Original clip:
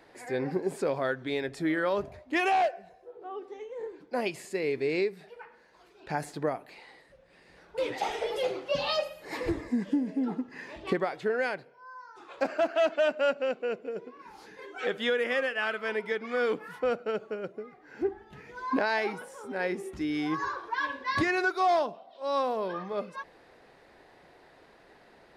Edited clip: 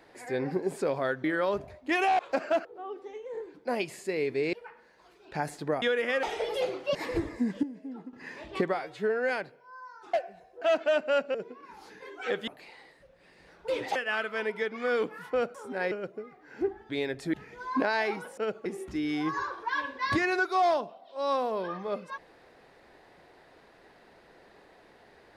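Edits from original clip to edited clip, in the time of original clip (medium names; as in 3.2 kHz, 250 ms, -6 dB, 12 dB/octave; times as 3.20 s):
1.24–1.68 s: move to 18.30 s
2.63–3.11 s: swap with 12.27–12.73 s
4.99–5.28 s: delete
6.57–8.05 s: swap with 15.04–15.45 s
8.77–9.27 s: delete
9.95–10.45 s: gain -11 dB
11.06–11.43 s: stretch 1.5×
13.46–13.91 s: delete
17.04–17.32 s: swap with 19.34–19.71 s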